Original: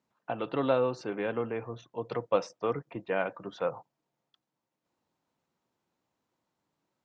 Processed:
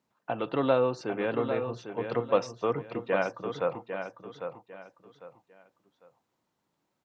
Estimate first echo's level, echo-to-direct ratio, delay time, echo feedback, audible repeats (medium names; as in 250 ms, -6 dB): -8.0 dB, -7.5 dB, 800 ms, 28%, 3